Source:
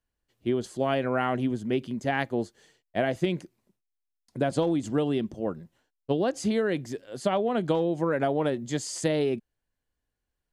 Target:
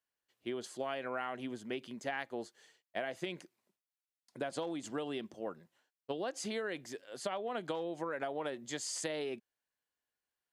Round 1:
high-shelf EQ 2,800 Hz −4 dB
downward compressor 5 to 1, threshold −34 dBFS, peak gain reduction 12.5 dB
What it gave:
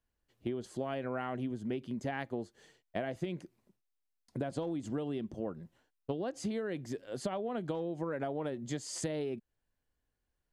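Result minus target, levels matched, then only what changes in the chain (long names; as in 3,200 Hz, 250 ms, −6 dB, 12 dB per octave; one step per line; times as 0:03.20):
1,000 Hz band −2.5 dB
add first: high-pass filter 1,100 Hz 6 dB per octave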